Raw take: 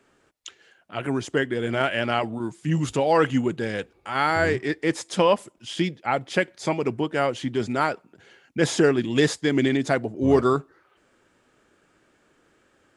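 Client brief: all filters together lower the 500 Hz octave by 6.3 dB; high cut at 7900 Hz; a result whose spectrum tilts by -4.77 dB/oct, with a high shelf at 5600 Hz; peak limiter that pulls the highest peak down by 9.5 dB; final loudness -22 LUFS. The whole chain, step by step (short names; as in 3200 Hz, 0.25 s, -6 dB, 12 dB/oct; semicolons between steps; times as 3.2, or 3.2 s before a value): LPF 7900 Hz; bell 500 Hz -8 dB; high shelf 5600 Hz -7.5 dB; gain +9 dB; limiter -10 dBFS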